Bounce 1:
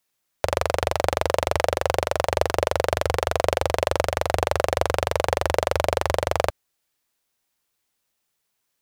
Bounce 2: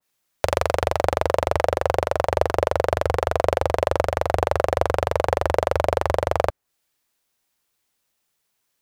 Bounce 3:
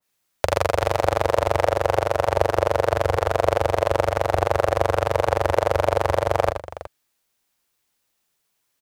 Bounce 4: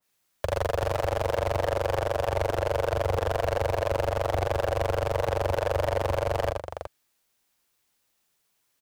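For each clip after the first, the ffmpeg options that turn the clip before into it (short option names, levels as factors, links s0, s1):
-af "adynamicequalizer=threshold=0.01:dfrequency=2000:dqfactor=0.7:tfrequency=2000:tqfactor=0.7:attack=5:release=100:ratio=0.375:range=4:mode=cutabove:tftype=highshelf,volume=1.26"
-af "aecho=1:1:77|368:0.447|0.188"
-af "asoftclip=type=tanh:threshold=0.119"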